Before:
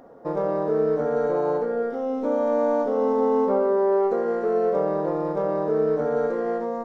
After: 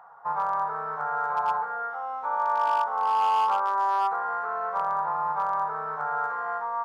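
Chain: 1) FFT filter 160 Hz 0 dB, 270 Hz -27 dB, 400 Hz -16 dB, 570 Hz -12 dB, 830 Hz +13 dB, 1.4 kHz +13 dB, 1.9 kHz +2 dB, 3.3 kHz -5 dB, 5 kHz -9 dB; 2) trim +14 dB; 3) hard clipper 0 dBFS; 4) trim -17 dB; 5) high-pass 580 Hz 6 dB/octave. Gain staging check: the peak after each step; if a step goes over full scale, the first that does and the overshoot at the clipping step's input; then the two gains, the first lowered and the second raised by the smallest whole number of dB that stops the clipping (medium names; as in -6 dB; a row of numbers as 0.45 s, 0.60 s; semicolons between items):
-9.5 dBFS, +4.5 dBFS, 0.0 dBFS, -17.0 dBFS, -15.5 dBFS; step 2, 4.5 dB; step 2 +9 dB, step 4 -12 dB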